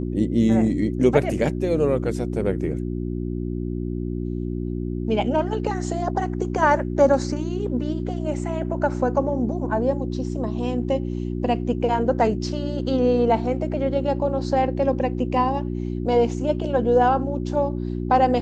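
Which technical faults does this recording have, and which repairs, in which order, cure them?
mains hum 60 Hz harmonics 6 −27 dBFS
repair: hum removal 60 Hz, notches 6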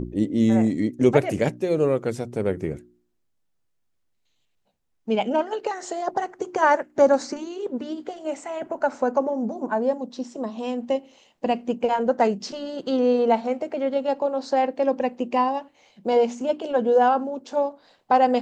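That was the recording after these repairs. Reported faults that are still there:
none of them is left

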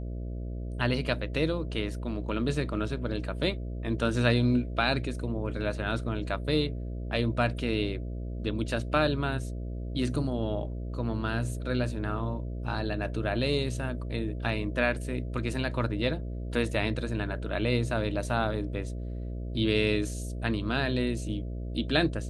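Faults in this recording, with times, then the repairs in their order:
mains buzz 60 Hz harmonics 11 −35 dBFS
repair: hum removal 60 Hz, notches 11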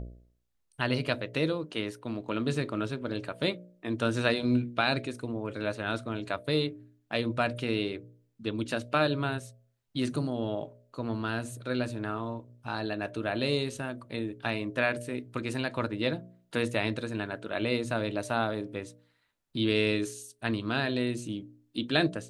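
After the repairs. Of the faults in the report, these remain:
none of them is left

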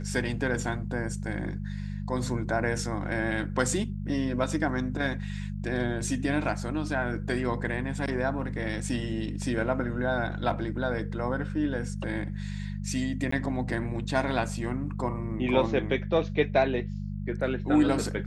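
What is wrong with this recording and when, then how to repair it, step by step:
mains hum 50 Hz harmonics 4 −34 dBFS
0:13.31–0:13.32: drop-out 14 ms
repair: hum removal 50 Hz, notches 4
repair the gap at 0:13.31, 14 ms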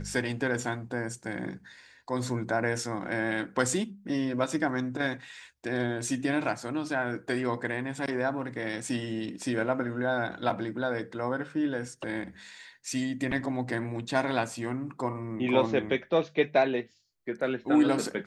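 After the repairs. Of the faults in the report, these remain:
none of them is left

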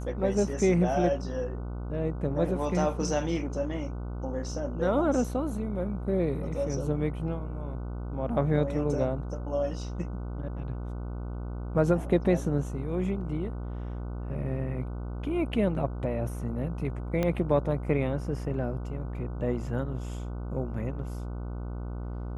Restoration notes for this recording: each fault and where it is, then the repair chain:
mains buzz 60 Hz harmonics 25 −35 dBFS
0:17.23: click −15 dBFS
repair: click removal
hum removal 60 Hz, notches 25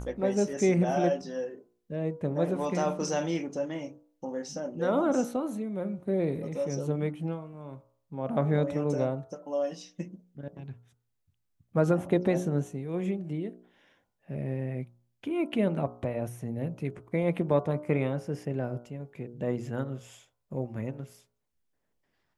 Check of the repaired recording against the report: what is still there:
0:17.23: click

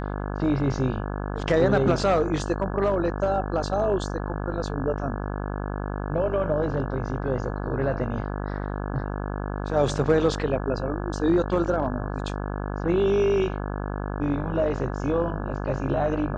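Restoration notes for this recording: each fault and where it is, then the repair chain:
mains buzz 50 Hz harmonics 34 −30 dBFS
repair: hum removal 50 Hz, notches 34

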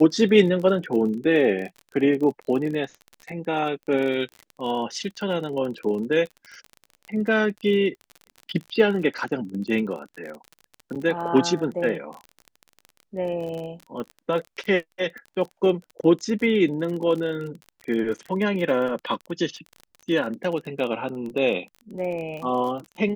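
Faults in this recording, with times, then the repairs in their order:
surface crackle 31 per second −31 dBFS
0:10.95–0:10.96: drop-out 7.1 ms
0:14.00: click −22 dBFS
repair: click removal
repair the gap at 0:10.95, 7.1 ms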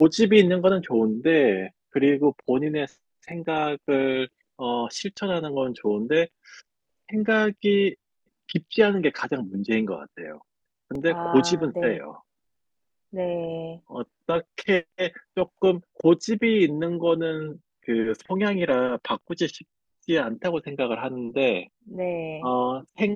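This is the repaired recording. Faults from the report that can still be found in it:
none of them is left

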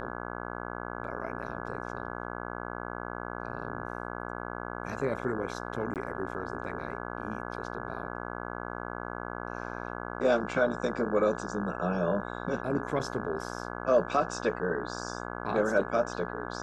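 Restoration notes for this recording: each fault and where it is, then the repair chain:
mains buzz 60 Hz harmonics 28 −38 dBFS
0:05.94–0:05.96: drop-out 18 ms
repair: hum removal 60 Hz, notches 28
repair the gap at 0:05.94, 18 ms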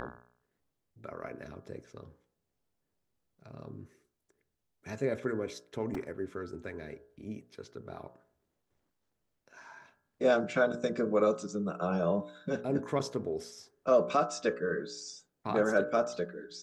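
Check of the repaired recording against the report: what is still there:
none of them is left

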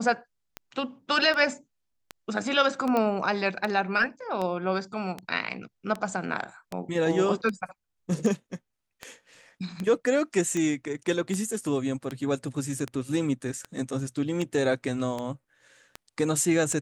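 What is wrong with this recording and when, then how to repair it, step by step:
scratch tick 78 rpm −18 dBFS
0:02.97: click −14 dBFS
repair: click removal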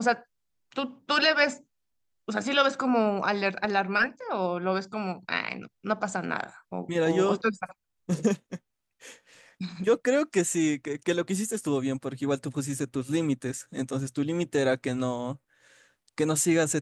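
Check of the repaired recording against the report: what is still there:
none of them is left

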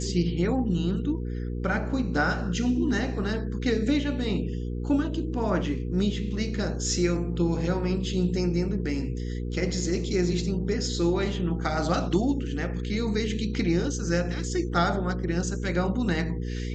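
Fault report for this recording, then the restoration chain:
mains hum 60 Hz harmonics 8 −31 dBFS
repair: hum removal 60 Hz, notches 8

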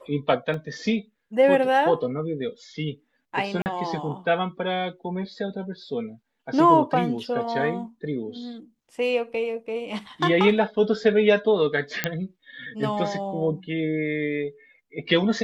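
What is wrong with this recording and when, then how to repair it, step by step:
0:00.54: drop-out 2.2 ms
0:03.62–0:03.66: drop-out 39 ms
0:12.04: click −6 dBFS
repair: click removal
repair the gap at 0:00.54, 2.2 ms
repair the gap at 0:03.62, 39 ms

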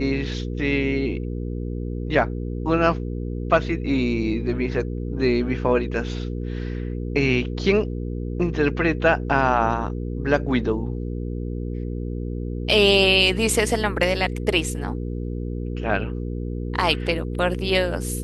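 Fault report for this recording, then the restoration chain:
mains hum 60 Hz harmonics 8 −28 dBFS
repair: hum removal 60 Hz, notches 8

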